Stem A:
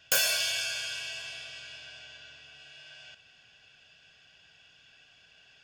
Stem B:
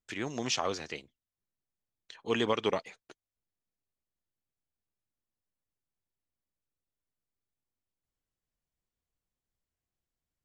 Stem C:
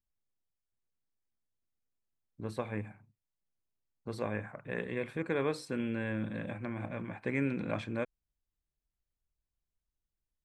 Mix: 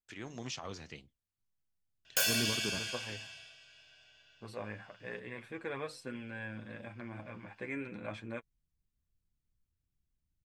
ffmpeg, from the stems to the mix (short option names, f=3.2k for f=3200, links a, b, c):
-filter_complex "[0:a]adelay=2050,volume=-4.5dB,afade=t=out:st=2.81:d=0.79:silence=0.316228[a];[1:a]alimiter=limit=-20.5dB:level=0:latency=1:release=97,asubboost=boost=11:cutoff=210,flanger=delay=4.5:depth=6.1:regen=-84:speed=1.9:shape=sinusoidal,volume=-4.5dB[b];[2:a]lowshelf=f=500:g=-6.5,flanger=delay=7.4:depth=2.9:regen=18:speed=0.34:shape=triangular,adelay=350,volume=-0.5dB[c];[a][b][c]amix=inputs=3:normalize=0"